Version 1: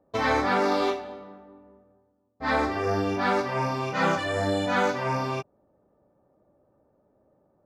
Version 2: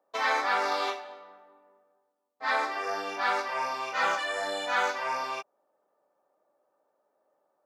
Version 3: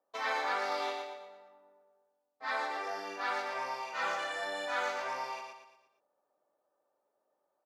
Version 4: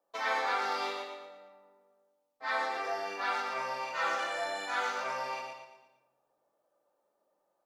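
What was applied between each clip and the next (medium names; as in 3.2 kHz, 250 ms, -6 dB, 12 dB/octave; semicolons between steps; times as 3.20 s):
high-pass 780 Hz 12 dB/octave
feedback delay 116 ms, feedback 43%, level -5 dB; trim -7.5 dB
simulated room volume 380 m³, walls mixed, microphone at 0.77 m; trim +1 dB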